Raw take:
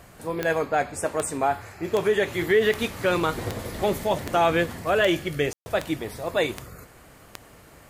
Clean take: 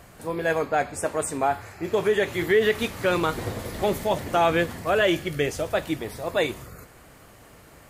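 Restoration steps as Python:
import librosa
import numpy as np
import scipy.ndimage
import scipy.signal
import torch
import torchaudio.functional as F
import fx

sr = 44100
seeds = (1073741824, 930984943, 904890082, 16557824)

y = fx.fix_declick_ar(x, sr, threshold=10.0)
y = fx.fix_ambience(y, sr, seeds[0], print_start_s=6.85, print_end_s=7.35, start_s=5.53, end_s=5.66)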